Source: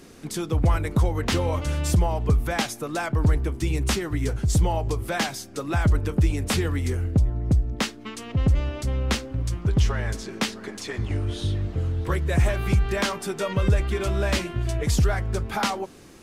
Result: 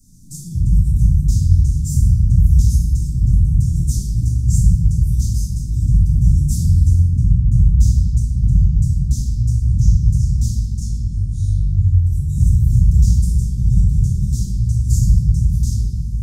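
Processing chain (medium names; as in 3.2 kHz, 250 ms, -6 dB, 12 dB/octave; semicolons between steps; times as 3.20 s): elliptic band-stop 160–6400 Hz, stop band 60 dB; high-order bell 1.6 kHz -15.5 dB; reverberation RT60 2.9 s, pre-delay 3 ms, DRR -13.5 dB; trim -5.5 dB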